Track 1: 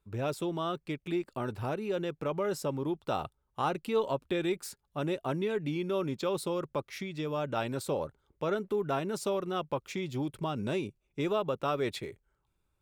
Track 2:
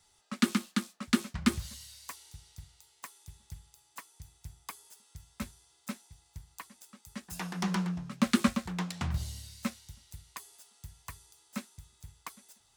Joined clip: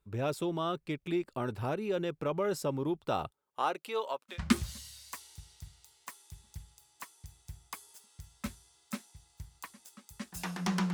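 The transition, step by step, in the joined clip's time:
track 1
0:03.30–0:04.40: high-pass filter 270 Hz → 1,000 Hz
0:04.34: continue with track 2 from 0:01.30, crossfade 0.12 s

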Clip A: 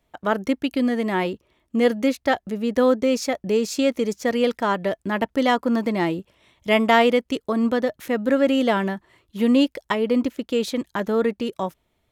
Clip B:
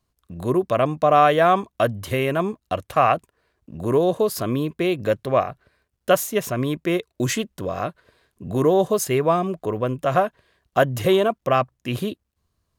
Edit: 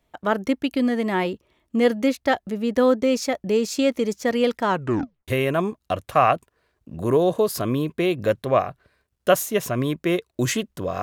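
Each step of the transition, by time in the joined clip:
clip A
0:04.69: tape stop 0.59 s
0:05.28: continue with clip B from 0:02.09

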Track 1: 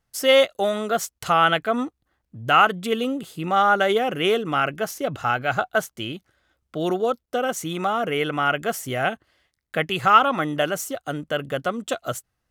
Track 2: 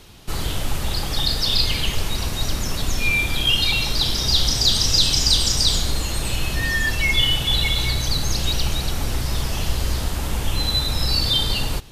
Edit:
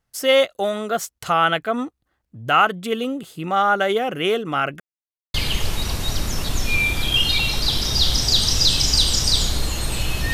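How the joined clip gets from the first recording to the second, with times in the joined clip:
track 1
0:04.80–0:05.34: silence
0:05.34: continue with track 2 from 0:01.67

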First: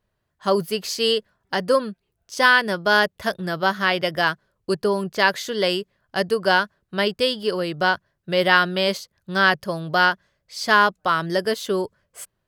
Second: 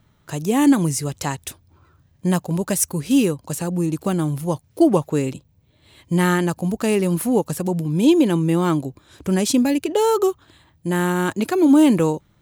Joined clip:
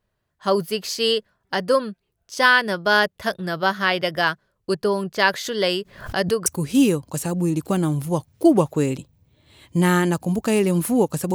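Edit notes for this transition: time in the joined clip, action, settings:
first
0:05.29–0:06.46: background raised ahead of every attack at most 110 dB per second
0:06.46: continue with second from 0:02.82

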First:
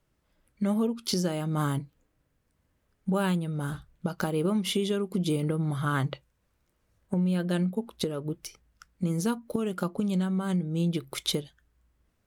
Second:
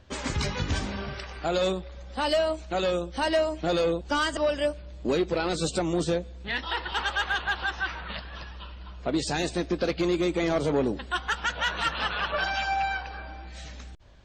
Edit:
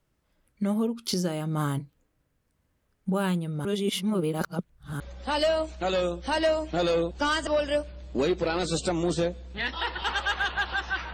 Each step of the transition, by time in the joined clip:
first
0:03.65–0:05.00: reverse
0:05.00: continue with second from 0:01.90

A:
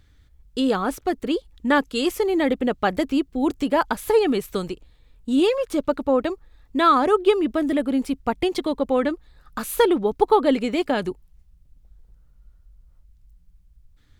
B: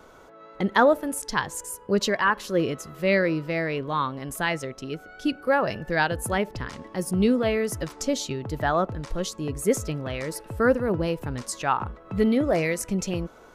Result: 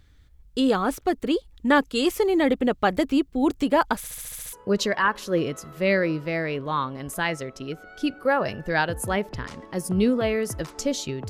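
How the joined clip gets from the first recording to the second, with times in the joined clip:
A
0:03.97: stutter in place 0.07 s, 8 plays
0:04.53: continue with B from 0:01.75

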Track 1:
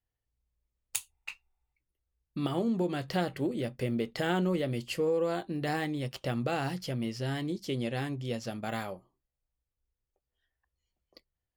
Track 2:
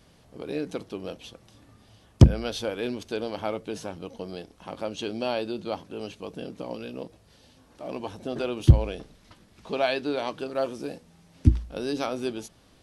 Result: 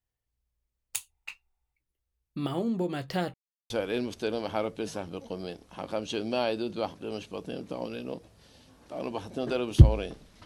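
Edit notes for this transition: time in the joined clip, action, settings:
track 1
0:03.34–0:03.70: silence
0:03.70: continue with track 2 from 0:02.59

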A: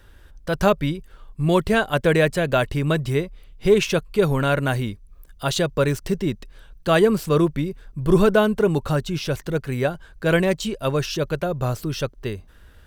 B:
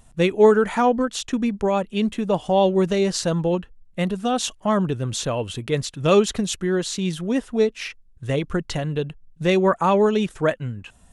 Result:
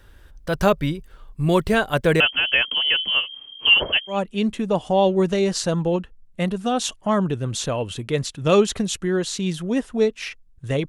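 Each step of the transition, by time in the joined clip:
A
0:02.20–0:04.19: voice inversion scrambler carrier 3,200 Hz
0:04.13: continue with B from 0:01.72, crossfade 0.12 s

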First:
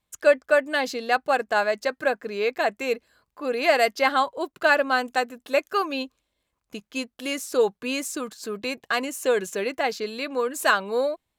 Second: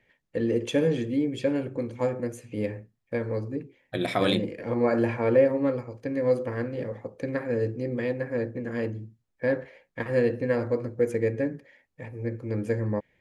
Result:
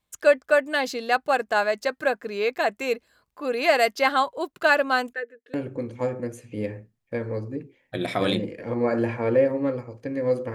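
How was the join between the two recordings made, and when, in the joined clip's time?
first
0:05.13–0:05.54: pair of resonant band-passes 890 Hz, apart 1.9 octaves
0:05.54: continue with second from 0:01.54

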